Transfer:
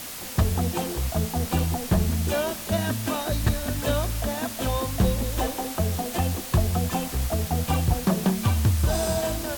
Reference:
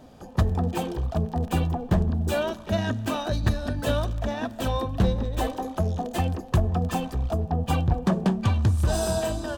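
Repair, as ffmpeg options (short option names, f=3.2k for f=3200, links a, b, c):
-af "adeclick=t=4,afwtdn=0.016"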